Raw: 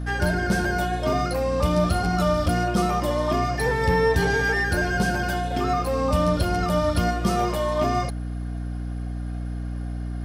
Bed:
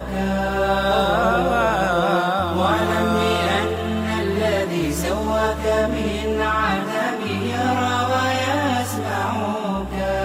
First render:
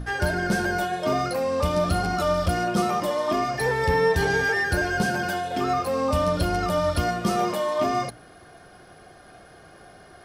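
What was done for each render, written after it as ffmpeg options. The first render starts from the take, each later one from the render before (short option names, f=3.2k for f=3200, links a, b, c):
-af "bandreject=f=60:t=h:w=6,bandreject=f=120:t=h:w=6,bandreject=f=180:t=h:w=6,bandreject=f=240:t=h:w=6,bandreject=f=300:t=h:w=6"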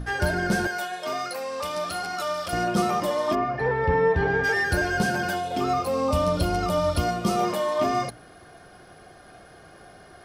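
-filter_complex "[0:a]asettb=1/sr,asplit=3[a][b][c];[a]atrim=end=0.674[d];[b]atrim=start=0.67:end=2.53,asetpts=PTS-STARTPTS,afade=t=in:d=0.004:c=qsin,afade=t=out:st=1.856:d=0.004:c=qsin,highpass=f=1.1k:p=1[e];[c]atrim=start=2.526[f];[d][e]acrossfade=d=0.004:c1=hsin:c2=qsin[g];[g][f]acrossfade=d=0.004:c1=qsin:c2=hsin,asplit=3[h][i][j];[h]afade=t=out:st=3.34:d=0.02[k];[i]lowpass=1.9k,afade=t=in:st=3.34:d=0.02,afade=t=out:st=4.43:d=0.02[l];[j]afade=t=in:st=4.43:d=0.02[m];[k][l][m]amix=inputs=3:normalize=0,asettb=1/sr,asplit=3[n][o][p];[n]atrim=end=5.354[q];[o]atrim=start=5.35:end=7.43,asetpts=PTS-STARTPTS,afade=t=in:d=0.004:c=qsin,afade=t=out:st=2.076:d=0.004:c=qsin,equalizer=f=1.7k:t=o:w=0.33:g=-8.5[r];[p]atrim=start=7.426[s];[q][r]acrossfade=d=0.004:c1=hsin:c2=qsin[t];[t][s]acrossfade=d=0.004:c1=qsin:c2=hsin"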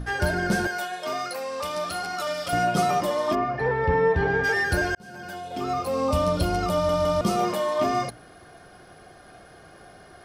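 -filter_complex "[0:a]asettb=1/sr,asplit=3[a][b][c];[a]atrim=end=2.264[d];[b]atrim=start=2.26:end=3.01,asetpts=PTS-STARTPTS,afade=t=in:d=0.004:c=qsin,afade=t=out:st=0.746:d=0.004:c=qsin,aecho=1:1:7.1:0.65,atrim=end_sample=33075[e];[c]atrim=start=3.006[f];[d][e]acrossfade=d=0.004:c1=hsin:c2=qsin[g];[g][f]acrossfade=d=0.004:c1=qsin:c2=hsin,asplit=5[h][i][j][k][l];[h]atrim=end=4.95,asetpts=PTS-STARTPTS,afade=t=out:st=4.946:d=0.004:c=hsin[m];[i]atrim=start=4.95:end=6.892,asetpts=PTS-STARTPTS,afade=t=in:d=1.08[n];[j]atrim=start=6.728:end=6.892[o];[k]atrim=start=6.728:end=6.892[p];[l]atrim=start=7.208[q];[m][n]concat=n=2:v=0:a=1[r];[r][o]acrossfade=d=0.004:c1=hsin:c2=hsin[s];[s][p]acrossfade=d=0.004:c1=hsin:c2=hsin[t];[t][q]acrossfade=d=0.004:c1=hsin:c2=hsin"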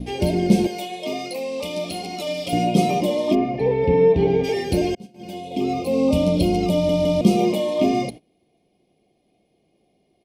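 -af "agate=range=-21dB:threshold=-38dB:ratio=16:detection=peak,firequalizer=gain_entry='entry(100,0);entry(210,12);entry(1000,-6);entry(1500,-28);entry(2200,6);entry(3200,5);entry(5100,0)':delay=0.05:min_phase=1"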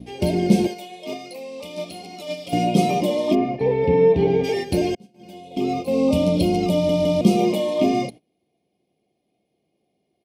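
-af "highpass=77,agate=range=-7dB:threshold=-25dB:ratio=16:detection=peak"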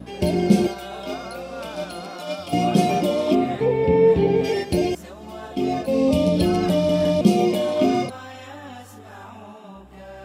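-filter_complex "[1:a]volume=-18dB[a];[0:a][a]amix=inputs=2:normalize=0"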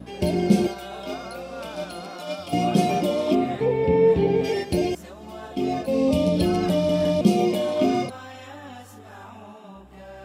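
-af "volume=-2dB"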